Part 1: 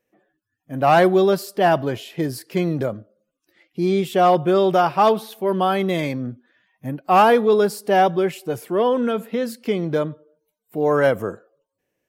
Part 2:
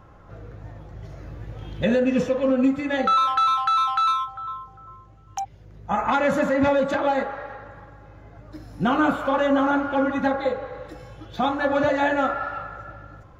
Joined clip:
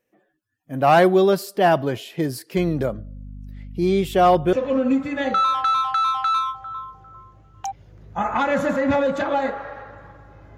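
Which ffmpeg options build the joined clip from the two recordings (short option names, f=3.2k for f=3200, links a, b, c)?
-filter_complex "[0:a]asettb=1/sr,asplit=3[a][b][c];[a]atrim=end=2.574[d];[b]atrim=start=2.57:end=4.53,asetpts=PTS-STARTPTS,afade=t=in:d=0.004:c=qsin,afade=t=out:st=1.956:d=0.004:c=qsin,aeval=exprs='val(0)+0.0178*(sin(2*PI*50*n/s)+sin(2*PI*2*50*n/s)/2+sin(2*PI*3*50*n/s)/3+sin(2*PI*4*50*n/s)/4+sin(2*PI*5*50*n/s)/5)':c=same[e];[c]atrim=start=4.526[f];[d][e]acrossfade=d=0.004:c1=hsin:c2=qsin[g];[g][f]acrossfade=d=0.004:c1=qsin:c2=hsin,apad=whole_dur=10.57,atrim=end=10.57,atrim=end=4.532[h];[1:a]atrim=start=2.258:end=8.3[i];[h][i]acrossfade=d=0.004:c1=hsin:c2=hsin"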